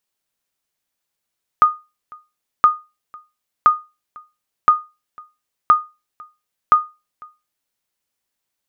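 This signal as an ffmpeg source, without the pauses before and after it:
-f lavfi -i "aevalsrc='0.708*(sin(2*PI*1230*mod(t,1.02))*exp(-6.91*mod(t,1.02)/0.26)+0.0447*sin(2*PI*1230*max(mod(t,1.02)-0.5,0))*exp(-6.91*max(mod(t,1.02)-0.5,0)/0.26))':d=6.12:s=44100"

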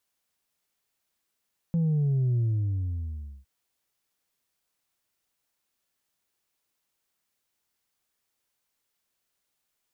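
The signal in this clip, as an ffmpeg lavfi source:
-f lavfi -i "aevalsrc='0.0794*clip((1.71-t)/1.08,0,1)*tanh(1.26*sin(2*PI*170*1.71/log(65/170)*(exp(log(65/170)*t/1.71)-1)))/tanh(1.26)':d=1.71:s=44100"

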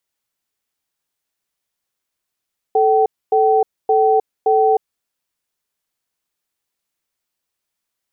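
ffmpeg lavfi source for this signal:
-f lavfi -i "aevalsrc='0.211*(sin(2*PI*438*t)+sin(2*PI*767*t))*clip(min(mod(t,0.57),0.31-mod(t,0.57))/0.005,0,1)':d=2.08:s=44100"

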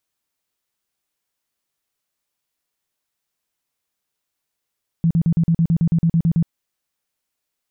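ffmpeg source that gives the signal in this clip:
-f lavfi -i "aevalsrc='0.237*sin(2*PI*166*mod(t,0.11))*lt(mod(t,0.11),11/166)':d=1.43:s=44100"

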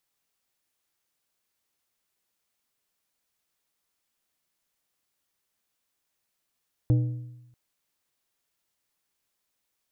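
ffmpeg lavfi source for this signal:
-f lavfi -i "aevalsrc='0.158*pow(10,-3*t/0.96)*sin(2*PI*122*t)+0.0531*pow(10,-3*t/0.729)*sin(2*PI*305*t)+0.0178*pow(10,-3*t/0.633)*sin(2*PI*488*t)+0.00596*pow(10,-3*t/0.592)*sin(2*PI*610*t)+0.002*pow(10,-3*t/0.548)*sin(2*PI*793*t)':d=0.64:s=44100"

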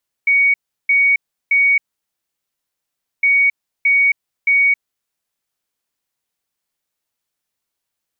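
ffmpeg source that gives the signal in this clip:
-f lavfi -i "aevalsrc='0.316*sin(2*PI*2240*t)*clip(min(mod(mod(t,2.96),0.62),0.27-mod(mod(t,2.96),0.62))/0.005,0,1)*lt(mod(t,2.96),1.86)':d=5.92:s=44100"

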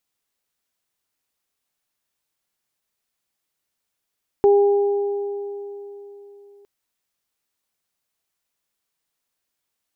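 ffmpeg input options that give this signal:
-f lavfi -i "aevalsrc='0.316*pow(10,-3*t/3.57)*sin(2*PI*404*t)+0.0841*pow(10,-3*t/2.81)*sin(2*PI*808*t)':d=2.21:s=44100"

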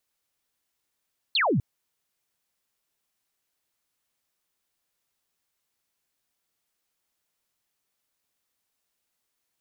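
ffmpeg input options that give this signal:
-f lavfi -i "aevalsrc='0.1*clip(t/0.002,0,1)*clip((0.25-t)/0.002,0,1)*sin(2*PI*4500*0.25/log(100/4500)*(exp(log(100/4500)*t/0.25)-1))':d=0.25:s=44100"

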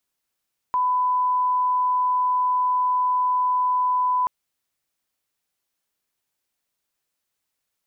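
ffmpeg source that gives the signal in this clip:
-f lavfi -i "sine=f=1000:d=3.53:r=44100,volume=0.06dB"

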